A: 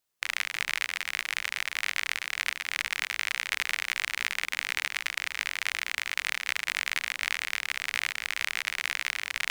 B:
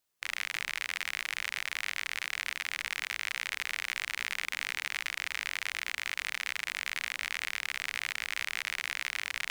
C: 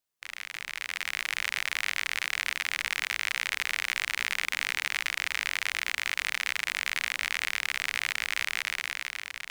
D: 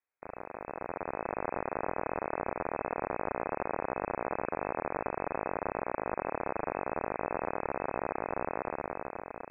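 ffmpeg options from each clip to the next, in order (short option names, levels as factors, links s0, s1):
-af "alimiter=limit=0.178:level=0:latency=1:release=14"
-af "dynaudnorm=f=210:g=9:m=3.16,volume=0.562"
-af "lowpass=f=2200:t=q:w=0.5098,lowpass=f=2200:t=q:w=0.6013,lowpass=f=2200:t=q:w=0.9,lowpass=f=2200:t=q:w=2.563,afreqshift=-2600"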